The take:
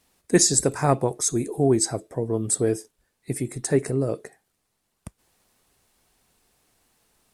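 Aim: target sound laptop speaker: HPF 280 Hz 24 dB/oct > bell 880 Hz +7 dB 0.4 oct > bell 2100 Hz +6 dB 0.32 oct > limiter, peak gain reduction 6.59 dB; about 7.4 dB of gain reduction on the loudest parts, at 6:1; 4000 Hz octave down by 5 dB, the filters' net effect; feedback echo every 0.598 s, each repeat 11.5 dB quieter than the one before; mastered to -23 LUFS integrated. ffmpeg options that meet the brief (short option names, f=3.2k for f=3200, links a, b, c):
-af "equalizer=f=4k:t=o:g=-7.5,acompressor=threshold=-20dB:ratio=6,highpass=f=280:w=0.5412,highpass=f=280:w=1.3066,equalizer=f=880:t=o:w=0.4:g=7,equalizer=f=2.1k:t=o:w=0.32:g=6,aecho=1:1:598|1196|1794:0.266|0.0718|0.0194,volume=7dB,alimiter=limit=-10.5dB:level=0:latency=1"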